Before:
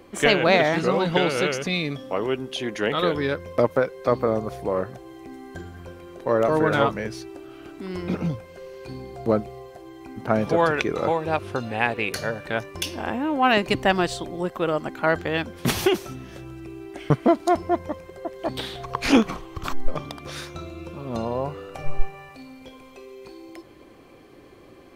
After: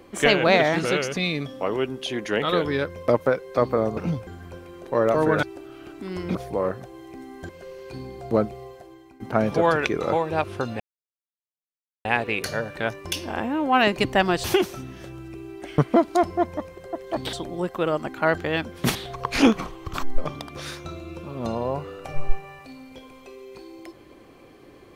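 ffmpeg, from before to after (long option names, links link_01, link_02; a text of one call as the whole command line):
ffmpeg -i in.wav -filter_complex "[0:a]asplit=12[link_01][link_02][link_03][link_04][link_05][link_06][link_07][link_08][link_09][link_10][link_11][link_12];[link_01]atrim=end=0.852[link_13];[link_02]atrim=start=1.348:end=4.472[link_14];[link_03]atrim=start=8.138:end=8.442[link_15];[link_04]atrim=start=5.608:end=6.772[link_16];[link_05]atrim=start=7.218:end=8.142[link_17];[link_06]atrim=start=4.468:end=5.612[link_18];[link_07]atrim=start=8.438:end=10.15,asetpts=PTS-STARTPTS,afade=type=out:start_time=1.192:duration=0.52:silence=0.188365[link_19];[link_08]atrim=start=10.15:end=11.75,asetpts=PTS-STARTPTS,afade=type=in:duration=0.004:curve=hsin:silence=0.188365,afade=type=out:start_time=1.596:duration=0.004:curve=hsin,apad=pad_dur=1.25[link_20];[link_09]atrim=start=11.75:end=14.142,asetpts=PTS-STARTPTS,afade=type=in:duration=0.004:curve=hsin[link_21];[link_10]atrim=start=15.758:end=18.652[link_22];[link_11]atrim=start=14.138:end=15.762[link_23];[link_12]atrim=start=18.648[link_24];[link_13][link_14]acrossfade=duration=0.004:curve1=hsin:curve2=hsin[link_25];[link_25][link_15]acrossfade=duration=0.004:curve1=hsin:curve2=hsin[link_26];[link_26][link_16]acrossfade=duration=0.004:curve1=hsin:curve2=hsin[link_27];[link_27][link_17]acrossfade=duration=0.004:curve1=hsin:curve2=hsin[link_28];[link_28][link_18]acrossfade=duration=0.004:curve1=hsin:curve2=hsin[link_29];[link_19][link_20][link_21]concat=n=3:v=0:a=1[link_30];[link_29][link_30]acrossfade=duration=0.004:curve1=hsin:curve2=hsin[link_31];[link_31][link_22]acrossfade=duration=0.004:curve1=hsin:curve2=hsin[link_32];[link_32][link_23]acrossfade=duration=0.004:curve1=hsin:curve2=hsin[link_33];[link_33][link_24]acrossfade=duration=0.004:curve1=hsin:curve2=hsin" out.wav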